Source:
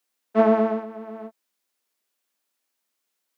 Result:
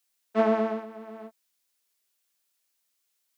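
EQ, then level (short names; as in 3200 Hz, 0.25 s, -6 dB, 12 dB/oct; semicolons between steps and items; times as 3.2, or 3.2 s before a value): high shelf 2100 Hz +9.5 dB; -6.0 dB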